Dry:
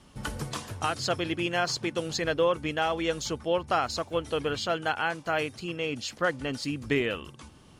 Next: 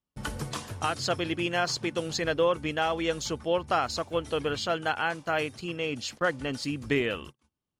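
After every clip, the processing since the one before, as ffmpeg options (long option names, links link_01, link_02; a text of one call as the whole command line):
ffmpeg -i in.wav -af "agate=range=-35dB:threshold=-42dB:ratio=16:detection=peak" out.wav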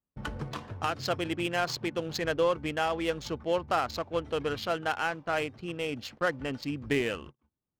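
ffmpeg -i in.wav -af "adynamicsmooth=sensitivity=5.5:basefreq=1600,volume=-1.5dB" out.wav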